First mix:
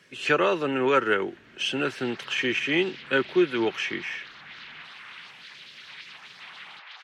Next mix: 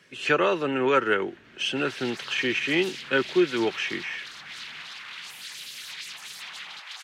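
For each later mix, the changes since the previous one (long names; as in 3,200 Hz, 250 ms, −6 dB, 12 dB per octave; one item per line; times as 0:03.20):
background: remove high-frequency loss of the air 260 metres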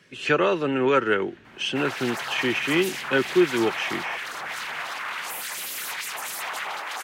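speech: add low-shelf EQ 330 Hz +5 dB
background: remove resonant band-pass 3,900 Hz, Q 1.7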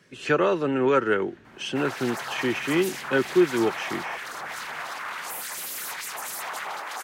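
master: add parametric band 2,800 Hz −6 dB 1.2 octaves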